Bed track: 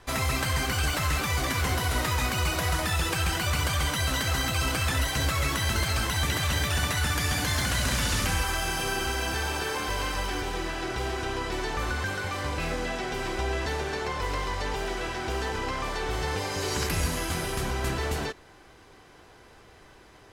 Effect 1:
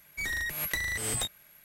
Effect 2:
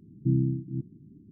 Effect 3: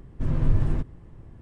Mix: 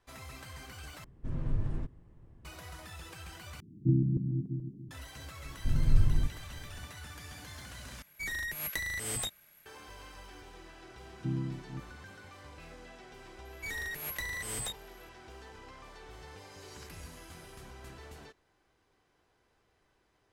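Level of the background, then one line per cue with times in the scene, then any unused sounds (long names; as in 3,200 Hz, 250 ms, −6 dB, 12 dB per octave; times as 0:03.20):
bed track −20 dB
0:01.04: overwrite with 3 −10.5 dB
0:03.60: overwrite with 2 −2.5 dB + feedback delay that plays each chunk backwards 143 ms, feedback 52%, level −2.5 dB
0:05.45: mix in 3 −13.5 dB + low-shelf EQ 190 Hz +12 dB
0:08.02: overwrite with 1 −4 dB
0:10.99: mix in 2 −9.5 dB
0:13.45: mix in 1 −9.5 dB + leveller curve on the samples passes 1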